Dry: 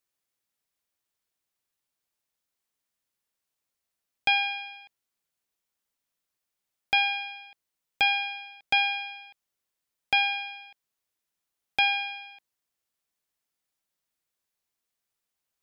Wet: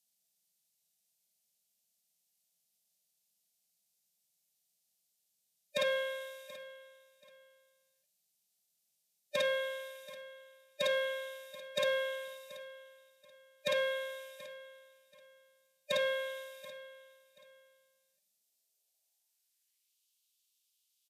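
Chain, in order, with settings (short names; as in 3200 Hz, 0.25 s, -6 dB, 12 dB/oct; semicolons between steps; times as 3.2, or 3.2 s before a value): tone controls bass -2 dB, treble +11 dB; fixed phaser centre 460 Hz, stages 6; doubler 40 ms -10 dB; formant-preserving pitch shift -2 st; soft clip -20 dBFS, distortion -16 dB; feedback echo 0.542 s, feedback 26%, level -17 dB; reverb RT60 0.40 s, pre-delay 7 ms, DRR 12 dB; high-pass sweep 220 Hz -> 4000 Hz, 13.48–14.81; speed mistake 45 rpm record played at 33 rpm; gain -5 dB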